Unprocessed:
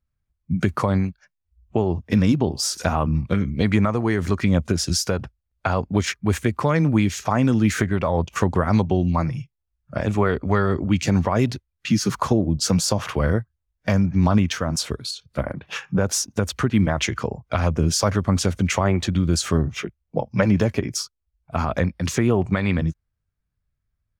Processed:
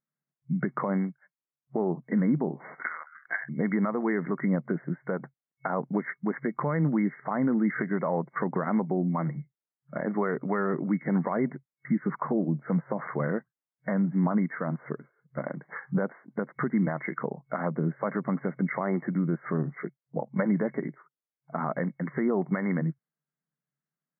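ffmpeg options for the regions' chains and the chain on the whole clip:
-filter_complex "[0:a]asettb=1/sr,asplit=3[s0][s1][s2];[s0]atrim=end=2.604[s3];[s1]atrim=start=2.6:end=3.49,asetpts=PTS-STARTPTS,afade=t=in:d=0.004:c=qsin,afade=t=out:st=0.886:d=0.004:c=qsin,agate=range=0.0224:threshold=0.0158:ratio=3:release=100:detection=peak,equalizer=f=2300:t=o:w=1.3:g=13.5,lowpass=f=3300:t=q:w=0.5098,lowpass=f=3300:t=q:w=0.6013,lowpass=f=3300:t=q:w=0.9,lowpass=f=3300:t=q:w=2.563,afreqshift=-3900[s4];[s2]atrim=start=3.486[s5];[s3][s4]acrossfade=d=0.004:c1=hsin:c2=qsin[s6];[s6][s5]acrossfade=d=0.004:c1=qsin:c2=hsin,afftfilt=real='re*between(b*sr/4096,130,2200)':imag='im*between(b*sr/4096,130,2200)':win_size=4096:overlap=0.75,alimiter=limit=0.237:level=0:latency=1:release=73,volume=0.596"

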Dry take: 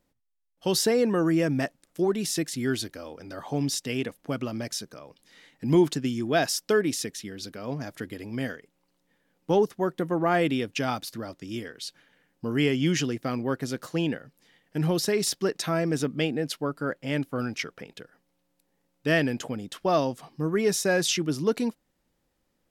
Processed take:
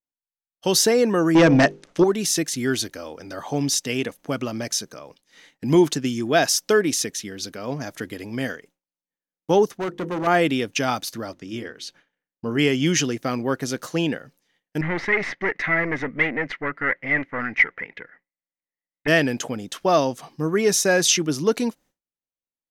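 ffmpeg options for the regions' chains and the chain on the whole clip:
-filter_complex "[0:a]asettb=1/sr,asplit=3[s0][s1][s2];[s0]atrim=end=1.354[s3];[s1]atrim=start=1.35:end=2.04,asetpts=PTS-STARTPTS,afade=t=in:d=0.004:c=qsin,afade=t=out:st=0.686:d=0.004:c=qsin,lowpass=4500,bandreject=f=50:t=h:w=6,bandreject=f=100:t=h:w=6,bandreject=f=150:t=h:w=6,bandreject=f=200:t=h:w=6,bandreject=f=250:t=h:w=6,bandreject=f=300:t=h:w=6,bandreject=f=350:t=h:w=6,bandreject=f=400:t=h:w=6,bandreject=f=450:t=h:w=6,bandreject=f=500:t=h:w=6,aeval=exprs='0.211*sin(PI/2*2*val(0)/0.211)':c=same[s4];[s2]atrim=start=2.036[s5];[s3][s4]acrossfade=d=0.004:c1=hsin:c2=qsin[s6];[s6][s5]acrossfade=d=0.004:c1=qsin:c2=hsin,asettb=1/sr,asplit=3[s7][s8][s9];[s7]atrim=end=9.774[s10];[s8]atrim=start=9.77:end=10.27,asetpts=PTS-STARTPTS,afade=t=in:d=0.004:c=qsin,afade=t=out:st=0.496:d=0.004:c=qsin,lowpass=f=2400:p=1,bandreject=f=50:t=h:w=6,bandreject=f=100:t=h:w=6,bandreject=f=150:t=h:w=6,bandreject=f=200:t=h:w=6,bandreject=f=250:t=h:w=6,bandreject=f=300:t=h:w=6,bandreject=f=350:t=h:w=6,bandreject=f=400:t=h:w=6,bandreject=f=450:t=h:w=6,bandreject=f=500:t=h:w=6,asoftclip=type=hard:threshold=0.0422[s11];[s9]atrim=start=10.266[s12];[s10][s11]acrossfade=d=0.004:c1=hsin:c2=qsin[s13];[s13][s12]acrossfade=d=0.004:c1=qsin:c2=hsin,asettb=1/sr,asplit=3[s14][s15][s16];[s14]atrim=end=11.324[s17];[s15]atrim=start=11.32:end=12.59,asetpts=PTS-STARTPTS,afade=t=in:d=0.004:c=qsin,afade=t=out:st=1.266:d=0.004:c=qsin,highshelf=f=4800:g=-11.5,bandreject=f=50:t=h:w=6,bandreject=f=100:t=h:w=6,bandreject=f=150:t=h:w=6,bandreject=f=200:t=h:w=6,bandreject=f=250:t=h:w=6,bandreject=f=300:t=h:w=6,bandreject=f=350:t=h:w=6[s18];[s16]atrim=start=12.586[s19];[s17][s18]acrossfade=d=0.004:c1=hsin:c2=qsin[s20];[s20][s19]acrossfade=d=0.004:c1=qsin:c2=hsin,asettb=1/sr,asplit=3[s21][s22][s23];[s21]atrim=end=14.814[s24];[s22]atrim=start=14.81:end=19.08,asetpts=PTS-STARTPTS,afade=t=in:d=0.004:c=qsin,afade=t=out:st=4.266:d=0.004:c=qsin,aeval=exprs='(tanh(20*val(0)+0.6)-tanh(0.6))/20':c=same,lowpass=f=2000:t=q:w=13[s25];[s23]atrim=start=19.076[s26];[s24][s25]acrossfade=d=0.004:c1=hsin:c2=qsin[s27];[s27][s26]acrossfade=d=0.004:c1=qsin:c2=hsin,lowshelf=f=270:g=-5,agate=range=0.0224:threshold=0.00282:ratio=3:detection=peak,equalizer=f=6200:w=8:g=7,volume=2"

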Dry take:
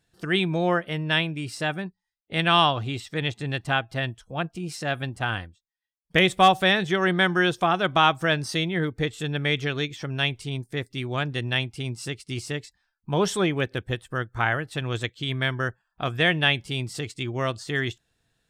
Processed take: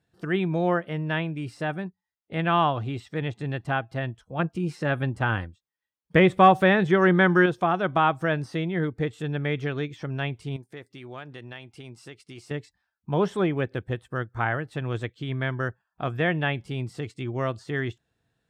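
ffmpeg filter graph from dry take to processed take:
-filter_complex "[0:a]asettb=1/sr,asplit=3[s0][s1][s2];[s0]atrim=end=4.394[s3];[s1]atrim=start=4.39:end=7.46,asetpts=PTS-STARTPTS,afade=t=in:d=0.004:c=qsin,afade=t=out:st=3.066:d=0.004:c=qsin,bandreject=f=710:w=8.5,acontrast=27[s4];[s2]atrim=start=7.456[s5];[s3][s4]acrossfade=d=0.004:c1=hsin:c2=qsin[s6];[s6][s5]acrossfade=d=0.004:c1=qsin:c2=hsin,asettb=1/sr,asplit=3[s7][s8][s9];[s7]atrim=end=10.564[s10];[s8]atrim=start=10.56:end=12.51,asetpts=PTS-STARTPTS,afade=t=in:d=0.004:c=qsin,afade=t=out:st=1.946:d=0.004:c=qsin,lowshelf=f=240:g=-12,acompressor=threshold=0.0112:ratio=2:attack=3.2:release=140:knee=1:detection=peak[s11];[s9]atrim=start=12.506[s12];[s10][s11]acrossfade=d=0.004:c1=hsin:c2=qsin[s13];[s13][s12]acrossfade=d=0.004:c1=qsin:c2=hsin,acrossover=split=2700[s14][s15];[s15]acompressor=threshold=0.0126:ratio=4:attack=1:release=60[s16];[s14][s16]amix=inputs=2:normalize=0,highpass=63,highshelf=f=2500:g=-11"

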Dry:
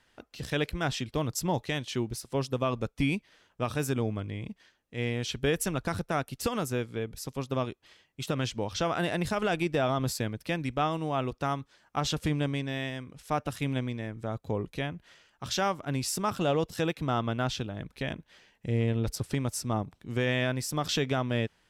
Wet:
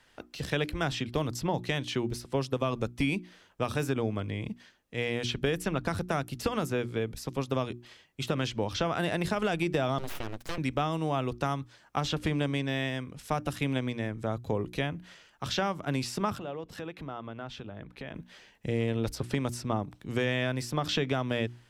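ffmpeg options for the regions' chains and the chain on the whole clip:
-filter_complex "[0:a]asettb=1/sr,asplit=3[s0][s1][s2];[s0]atrim=end=9.984[s3];[s1]atrim=start=9.98:end=10.58,asetpts=PTS-STARTPTS,afade=t=in:d=0.004:c=qsin,afade=t=out:st=0.596:d=0.004:c=qsin,lowshelf=f=180:g=-6,acompressor=threshold=0.0224:ratio=2.5:attack=3.2:release=140:knee=1:detection=peak,aeval=exprs='abs(val(0))':c=same[s4];[s2]atrim=start=10.576[s5];[s3][s4]acrossfade=d=0.004:c1=hsin:c2=qsin[s6];[s6][s5]acrossfade=d=0.004:c1=qsin:c2=hsin,asettb=1/sr,asplit=3[s7][s8][s9];[s7]atrim=end=16.384[s10];[s8]atrim=start=16.38:end=18.15,asetpts=PTS-STARTPTS,afade=t=in:d=0.004:c=qsin,afade=t=out:st=1.766:d=0.004:c=qsin,acompressor=threshold=0.0112:ratio=4:attack=3.2:release=140:knee=1:detection=peak,bass=f=250:g=-4,treble=f=4000:g=-13[s11];[s9]atrim=start=18.146[s12];[s10][s11]acrossfade=d=0.004:c1=hsin:c2=qsin[s13];[s13][s12]acrossfade=d=0.004:c1=qsin:c2=hsin,bandreject=f=60:t=h:w=6,bandreject=f=120:t=h:w=6,bandreject=f=180:t=h:w=6,bandreject=f=240:t=h:w=6,bandreject=f=300:t=h:w=6,bandreject=f=360:t=h:w=6,acrossover=split=230|4100[s14][s15][s16];[s14]acompressor=threshold=0.0141:ratio=4[s17];[s15]acompressor=threshold=0.0282:ratio=4[s18];[s16]acompressor=threshold=0.00316:ratio=4[s19];[s17][s18][s19]amix=inputs=3:normalize=0,volume=1.58"

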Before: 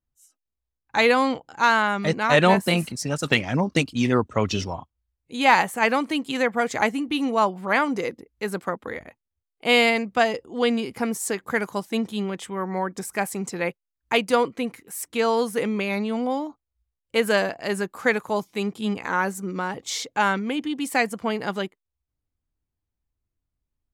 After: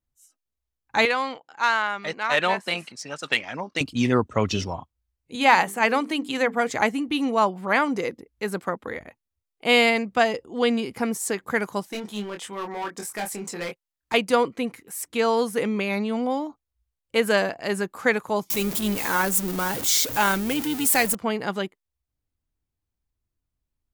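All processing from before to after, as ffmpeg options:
-filter_complex "[0:a]asettb=1/sr,asplit=3[s0][s1][s2];[s0]atrim=end=1.054[s3];[s1]atrim=start=1.05:end=3.81,asetpts=PTS-STARTPTS,afade=t=in:d=0.004:c=qsin,afade=t=out:st=2.756:d=0.004:c=qsin,highpass=f=1100:p=1,adynamicsmooth=sensitivity=1:basefreq=5500[s4];[s2]atrim=start=3.806[s5];[s3][s4]acrossfade=d=0.004:c1=hsin:c2=qsin[s6];[s6][s5]acrossfade=d=0.004:c1=qsin:c2=hsin,asettb=1/sr,asplit=3[s7][s8][s9];[s7]atrim=end=5.354[s10];[s8]atrim=start=5.35:end=6.7,asetpts=PTS-STARTPTS,afade=t=in:d=0.004:c=qsin,afade=t=out:st=1.346:d=0.004:c=qsin,highpass=130,bandreject=f=50:t=h:w=6,bandreject=f=100:t=h:w=6,bandreject=f=150:t=h:w=6,bandreject=f=200:t=h:w=6,bandreject=f=250:t=h:w=6,bandreject=f=300:t=h:w=6,bandreject=f=350:t=h:w=6,bandreject=f=400:t=h:w=6,bandreject=f=450:t=h:w=6[s11];[s9]atrim=start=6.696[s12];[s10][s11]acrossfade=d=0.004:c1=hsin:c2=qsin[s13];[s13][s12]acrossfade=d=0.004:c1=qsin:c2=hsin,asettb=1/sr,asplit=3[s14][s15][s16];[s14]atrim=end=11.884[s17];[s15]atrim=start=11.88:end=14.14,asetpts=PTS-STARTPTS,afade=t=in:d=0.004:c=qsin,afade=t=out:st=2.256:d=0.004:c=qsin,lowshelf=f=270:g=-9.5,asoftclip=type=hard:threshold=0.0447,asplit=2[s18][s19];[s19]adelay=24,volume=0.562[s20];[s18][s20]amix=inputs=2:normalize=0,atrim=end_sample=99666[s21];[s16]atrim=start=14.136[s22];[s17][s21]acrossfade=d=0.004:c1=hsin:c2=qsin[s23];[s23][s22]acrossfade=d=0.004:c1=qsin:c2=hsin,asettb=1/sr,asplit=3[s24][s25][s26];[s24]atrim=end=18.504[s27];[s25]atrim=start=18.5:end=21.15,asetpts=PTS-STARTPTS,afade=t=in:d=0.004:c=qsin,afade=t=out:st=2.646:d=0.004:c=qsin,aeval=exprs='val(0)+0.5*0.0376*sgn(val(0))':c=same,aemphasis=mode=production:type=50fm,tremolo=f=160:d=0.333[s28];[s26]atrim=start=21.146[s29];[s27][s28]acrossfade=d=0.004:c1=hsin:c2=qsin[s30];[s30][s29]acrossfade=d=0.004:c1=qsin:c2=hsin"

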